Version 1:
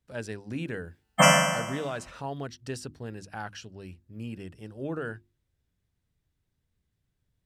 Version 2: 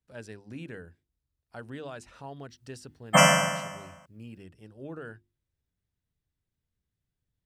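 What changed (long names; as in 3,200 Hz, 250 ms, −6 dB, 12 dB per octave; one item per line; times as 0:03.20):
speech −7.0 dB
background: entry +1.95 s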